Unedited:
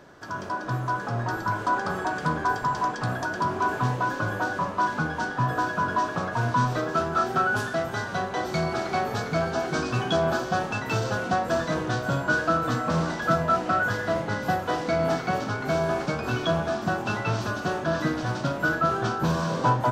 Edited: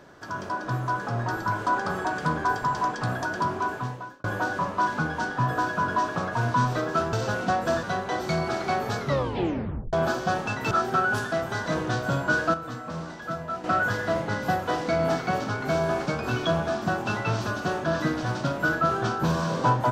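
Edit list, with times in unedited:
3.42–4.24 fade out
7.13–8.08 swap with 10.96–11.66
9.24 tape stop 0.94 s
12.54–13.64 gain -9.5 dB

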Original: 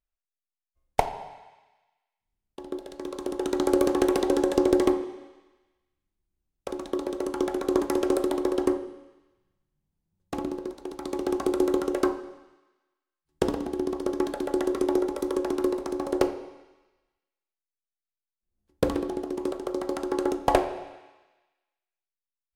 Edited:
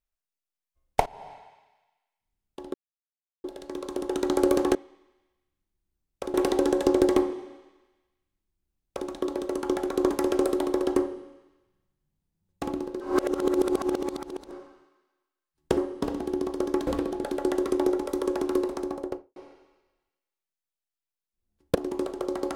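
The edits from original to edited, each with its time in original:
1.06–1.31 fade in, from -20.5 dB
2.74 insert silence 0.70 s
5.2–6.79 copy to 4.05
8.69–8.94 copy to 13.48
10.71–12.22 reverse
15.8–16.45 studio fade out
18.84–19.21 move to 14.33

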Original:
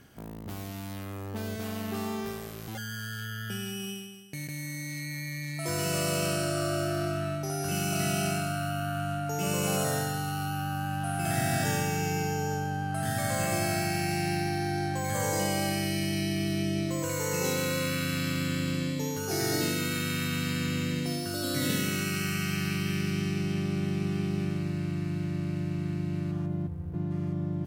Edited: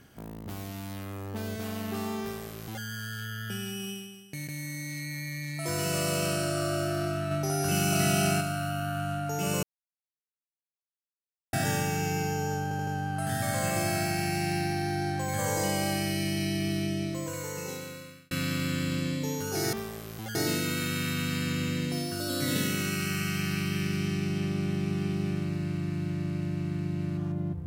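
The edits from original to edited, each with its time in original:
2.22–2.84 copy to 19.49
7.31–8.41 gain +3.5 dB
9.63–11.53 mute
12.63 stutter 0.08 s, 4 plays
16.47–18.07 fade out

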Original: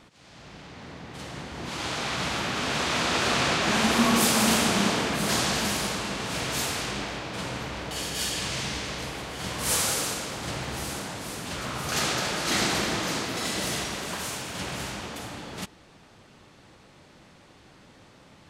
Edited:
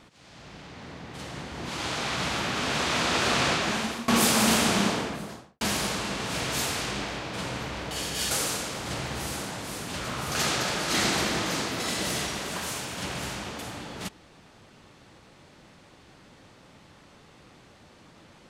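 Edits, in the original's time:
3.49–4.08 fade out, to -21.5 dB
4.72–5.61 studio fade out
8.31–9.88 cut

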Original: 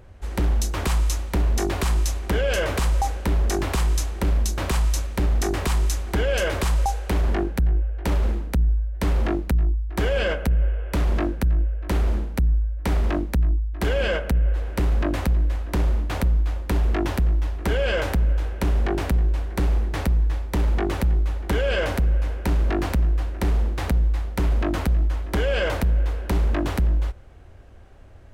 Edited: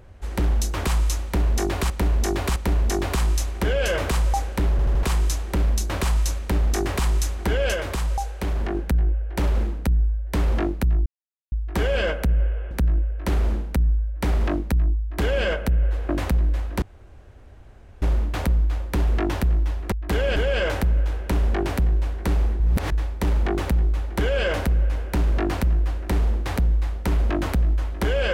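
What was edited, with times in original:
1.24–1.9 loop, 3 plays
3.39 stutter in place 0.08 s, 4 plays
6.42–7.43 gain -3.5 dB
9.74 insert silence 0.46 s
10.93–11.34 cut
13.64–14.08 copy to 17.68
14.72–15.05 cut
15.78 insert room tone 1.20 s
19.92–20.24 reverse

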